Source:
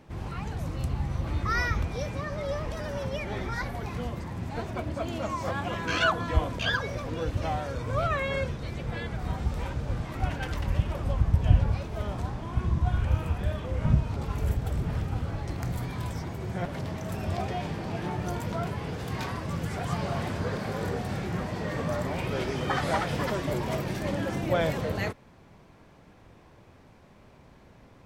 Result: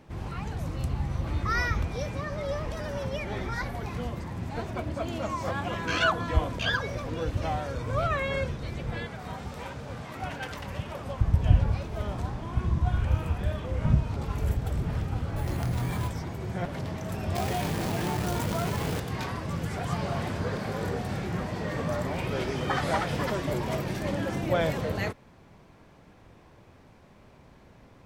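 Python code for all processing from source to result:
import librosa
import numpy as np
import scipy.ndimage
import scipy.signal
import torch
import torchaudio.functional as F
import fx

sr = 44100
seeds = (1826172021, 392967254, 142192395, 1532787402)

y = fx.chain(x, sr, fx.highpass(hz=70.0, slope=12),
    fx.low_shelf(hz=150.0, db=-11.0),
    fx.notch(hz=330.0, q=8.5), at=(9.05, 11.21))
y = fx.chain(y, sr, fx.doubler(ms=25.0, db=-7.5),
    fx.resample_bad(factor=4, down='none', up='hold'),
    fx.env_flatten(amount_pct=50), at=(15.36, 16.08))
y = fx.chain(y, sr, fx.quant_companded(bits=4),
    fx.env_flatten(amount_pct=70), at=(17.35, 19.0))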